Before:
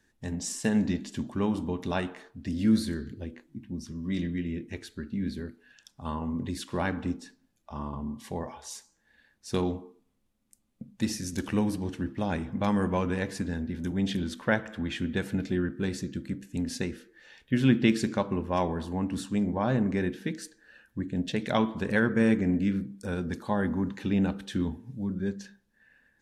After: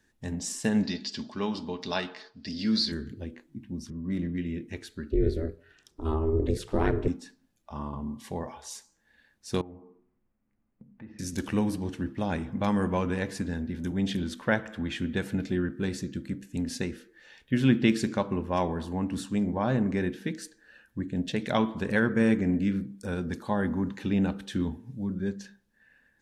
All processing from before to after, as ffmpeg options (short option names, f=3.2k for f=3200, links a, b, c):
-filter_complex "[0:a]asettb=1/sr,asplit=3[a][b][c];[a]atrim=end=0.834[d];[b]atrim=start=0.83:end=2.92,asetpts=PTS-STARTPTS,afade=t=in:d=0.004:c=qsin,afade=t=out:st=2.086:d=0.004:c=qsin,lowpass=f=4.8k:t=q:w=7,lowshelf=f=290:g=-9.5,aecho=1:1:4.7:0.33,atrim=end_sample=92169[e];[c]atrim=start=2.916[f];[d][e]acrossfade=d=0.004:c1=hsin:c2=qsin[g];[g][f]acrossfade=d=0.004:c1=qsin:c2=hsin,asettb=1/sr,asplit=3[h][i][j];[h]atrim=end=3.904[k];[i]atrim=start=3.9:end=4.38,asetpts=PTS-STARTPTS,afade=t=in:d=0.004:c=qsin,afade=t=out:st=0.476:d=0.004:c=qsin,adynamicsmooth=sensitivity=7:basefreq=2.3k,equalizer=f=4.4k:w=0.64:g=-8[l];[j]atrim=start=4.376[m];[k][l]acrossfade=d=0.004:c1=hsin:c2=qsin[n];[n][m]acrossfade=d=0.004:c1=qsin:c2=hsin,asettb=1/sr,asplit=3[o][p][q];[o]atrim=end=5.114[r];[p]atrim=start=5.11:end=7.08,asetpts=PTS-STARTPTS,afade=t=in:d=0.004:c=qsin,afade=t=out:st=1.966:d=0.004:c=qsin,equalizer=f=150:w=0.31:g=11,aeval=exprs='val(0)*sin(2*PI*160*n/s)':c=same[s];[q]atrim=start=7.076[t];[r][s]acrossfade=d=0.004:c1=hsin:c2=qsin[u];[u][t]acrossfade=d=0.004:c1=qsin:c2=hsin,asettb=1/sr,asplit=3[v][w][x];[v]atrim=end=9.614[y];[w]atrim=start=9.61:end=11.19,asetpts=PTS-STARTPTS,afade=t=in:d=0.004:c=qsin,afade=t=out:st=1.576:d=0.004:c=qsin,lowpass=f=2.1k:w=0.5412,lowpass=f=2.1k:w=1.3066,acompressor=threshold=-49dB:ratio=2.5:attack=3.2:release=140:knee=1:detection=peak,bandreject=f=60.6:t=h:w=4,bandreject=f=121.2:t=h:w=4,bandreject=f=181.8:t=h:w=4,bandreject=f=242.4:t=h:w=4,bandreject=f=303:t=h:w=4,bandreject=f=363.6:t=h:w=4,bandreject=f=424.2:t=h:w=4,bandreject=f=484.8:t=h:w=4,bandreject=f=545.4:t=h:w=4,bandreject=f=606:t=h:w=4,bandreject=f=666.6:t=h:w=4,bandreject=f=727.2:t=h:w=4,bandreject=f=787.8:t=h:w=4,bandreject=f=848.4:t=h:w=4,bandreject=f=909:t=h:w=4,bandreject=f=969.6:t=h:w=4,bandreject=f=1.0302k:t=h:w=4,bandreject=f=1.0908k:t=h:w=4,bandreject=f=1.1514k:t=h:w=4,bandreject=f=1.212k:t=h:w=4,bandreject=f=1.2726k:t=h:w=4,bandreject=f=1.3332k:t=h:w=4,bandreject=f=1.3938k:t=h:w=4,bandreject=f=1.4544k:t=h:w=4,bandreject=f=1.515k:t=h:w=4,bandreject=f=1.5756k:t=h:w=4,bandreject=f=1.6362k:t=h:w=4,bandreject=f=1.6968k:t=h:w=4,bandreject=f=1.7574k:t=h:w=4,bandreject=f=1.818k:t=h:w=4,bandreject=f=1.8786k:t=h:w=4,bandreject=f=1.9392k:t=h:w=4[z];[x]atrim=start=11.186[aa];[y][z]acrossfade=d=0.004:c1=hsin:c2=qsin[ab];[ab][aa]acrossfade=d=0.004:c1=qsin:c2=hsin"